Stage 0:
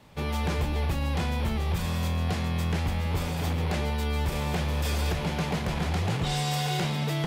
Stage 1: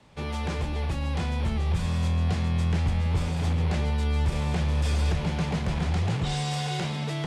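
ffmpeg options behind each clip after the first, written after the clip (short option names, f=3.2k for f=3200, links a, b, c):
-filter_complex "[0:a]lowpass=f=9.8k:w=0.5412,lowpass=f=9.8k:w=1.3066,acrossover=split=190|730|2500[a][b][c][d];[a]dynaudnorm=f=310:g=9:m=6dB[e];[e][b][c][d]amix=inputs=4:normalize=0,volume=-2dB"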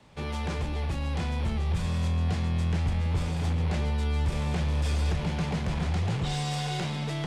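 -filter_complex "[0:a]asplit=2[a][b];[b]asoftclip=type=tanh:threshold=-33dB,volume=-7.5dB[c];[a][c]amix=inputs=2:normalize=0,aeval=exprs='0.188*(cos(1*acos(clip(val(0)/0.188,-1,1)))-cos(1*PI/2))+0.00376*(cos(8*acos(clip(val(0)/0.188,-1,1)))-cos(8*PI/2))':c=same,volume=-3dB"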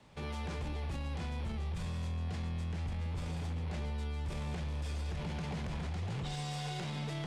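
-af "alimiter=level_in=3.5dB:limit=-24dB:level=0:latency=1:release=26,volume=-3.5dB,volume=-4dB"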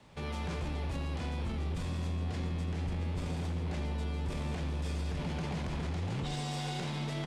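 -filter_complex "[0:a]asplit=9[a][b][c][d][e][f][g][h][i];[b]adelay=83,afreqshift=95,volume=-12dB[j];[c]adelay=166,afreqshift=190,volume=-15.7dB[k];[d]adelay=249,afreqshift=285,volume=-19.5dB[l];[e]adelay=332,afreqshift=380,volume=-23.2dB[m];[f]adelay=415,afreqshift=475,volume=-27dB[n];[g]adelay=498,afreqshift=570,volume=-30.7dB[o];[h]adelay=581,afreqshift=665,volume=-34.5dB[p];[i]adelay=664,afreqshift=760,volume=-38.2dB[q];[a][j][k][l][m][n][o][p][q]amix=inputs=9:normalize=0,volume=2dB"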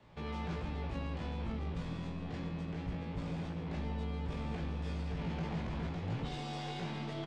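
-filter_complex "[0:a]adynamicsmooth=sensitivity=2.5:basefreq=4.6k,asplit=2[a][b];[b]adelay=18,volume=-3.5dB[c];[a][c]amix=inputs=2:normalize=0,volume=-3.5dB"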